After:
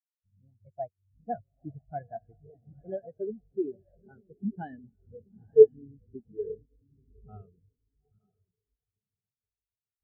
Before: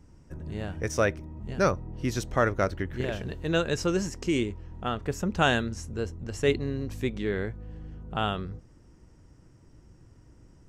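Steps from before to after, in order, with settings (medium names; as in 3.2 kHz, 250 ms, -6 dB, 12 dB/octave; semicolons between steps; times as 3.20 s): gliding tape speed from 127% -> 86%; in parallel at +2.5 dB: compression, threshold -38 dBFS, peak gain reduction 18.5 dB; on the sum: echo that smears into a reverb 902 ms, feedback 58%, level -4.5 dB; spectral contrast expander 4:1; trim +3 dB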